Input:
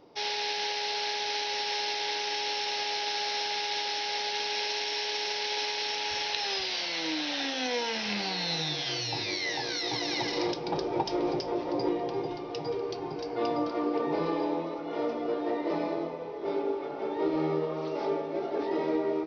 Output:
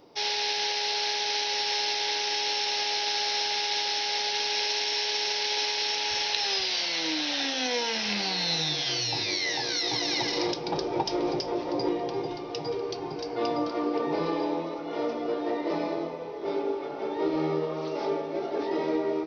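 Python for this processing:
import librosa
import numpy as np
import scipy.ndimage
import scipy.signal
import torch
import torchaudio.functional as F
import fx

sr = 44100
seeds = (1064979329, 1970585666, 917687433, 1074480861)

y = fx.high_shelf(x, sr, hz=5300.0, db=9.0)
y = F.gain(torch.from_numpy(y), 1.0).numpy()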